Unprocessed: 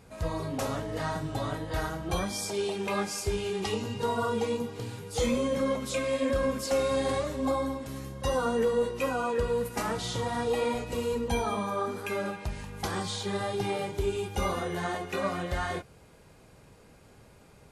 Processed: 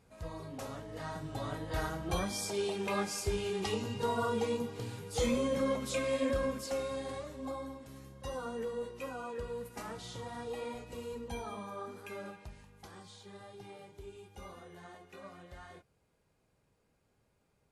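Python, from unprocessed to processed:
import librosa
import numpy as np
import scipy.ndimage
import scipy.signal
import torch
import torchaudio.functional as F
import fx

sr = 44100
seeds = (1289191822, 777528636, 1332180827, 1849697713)

y = fx.gain(x, sr, db=fx.line((0.84, -11.0), (1.8, -3.5), (6.24, -3.5), (7.07, -12.0), (12.31, -12.0), (12.85, -19.5)))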